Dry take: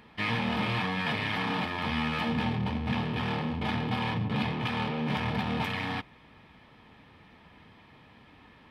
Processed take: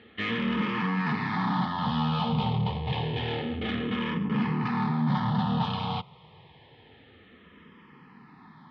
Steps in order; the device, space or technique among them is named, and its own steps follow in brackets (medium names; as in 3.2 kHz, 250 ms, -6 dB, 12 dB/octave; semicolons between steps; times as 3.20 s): barber-pole phaser into a guitar amplifier (barber-pole phaser -0.28 Hz; saturation -25.5 dBFS, distortion -19 dB; cabinet simulation 110–4000 Hz, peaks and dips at 160 Hz +4 dB, 300 Hz -6 dB, 620 Hz -8 dB, 1.6 kHz -6 dB, 2.4 kHz -9 dB); trim +8 dB